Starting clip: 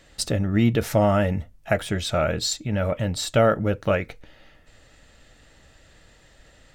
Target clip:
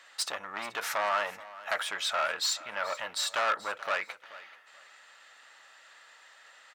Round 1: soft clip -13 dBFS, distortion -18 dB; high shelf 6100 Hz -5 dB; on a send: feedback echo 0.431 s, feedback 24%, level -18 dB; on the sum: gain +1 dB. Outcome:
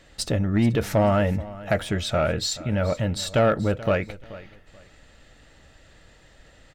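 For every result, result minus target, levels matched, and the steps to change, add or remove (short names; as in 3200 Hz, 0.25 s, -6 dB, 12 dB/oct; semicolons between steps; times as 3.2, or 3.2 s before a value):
soft clip: distortion -10 dB; 1000 Hz band -6.0 dB
change: soft clip -22.5 dBFS, distortion -8 dB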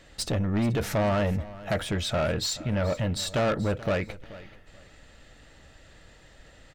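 1000 Hz band -6.0 dB
add after soft clip: resonant high-pass 1100 Hz, resonance Q 1.8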